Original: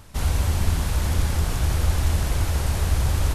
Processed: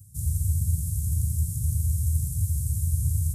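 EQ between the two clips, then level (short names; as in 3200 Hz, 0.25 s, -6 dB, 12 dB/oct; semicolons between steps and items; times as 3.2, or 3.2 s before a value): HPF 81 Hz 24 dB/oct; Chebyshev band-stop 130–8400 Hz, order 3; dynamic EQ 120 Hz, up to -3 dB, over -42 dBFS, Q 5.3; +3.0 dB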